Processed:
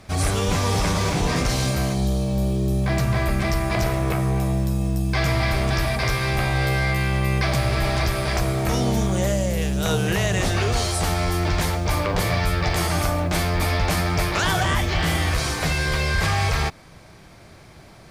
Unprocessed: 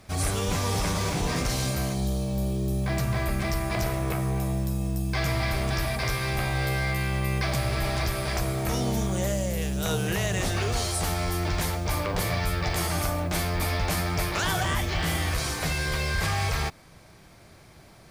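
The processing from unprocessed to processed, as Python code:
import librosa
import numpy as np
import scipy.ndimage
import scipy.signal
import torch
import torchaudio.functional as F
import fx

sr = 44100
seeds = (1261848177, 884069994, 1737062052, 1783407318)

y = fx.high_shelf(x, sr, hz=10000.0, db=-8.5)
y = y * librosa.db_to_amplitude(5.5)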